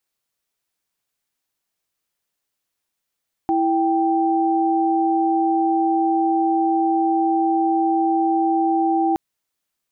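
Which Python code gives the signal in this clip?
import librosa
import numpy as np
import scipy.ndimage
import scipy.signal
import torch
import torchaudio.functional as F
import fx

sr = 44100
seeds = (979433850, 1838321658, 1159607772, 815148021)

y = fx.chord(sr, length_s=5.67, notes=(64, 79), wave='sine', level_db=-18.5)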